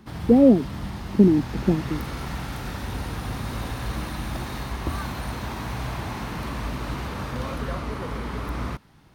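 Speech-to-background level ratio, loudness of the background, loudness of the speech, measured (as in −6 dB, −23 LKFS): 12.5 dB, −32.0 LKFS, −19.5 LKFS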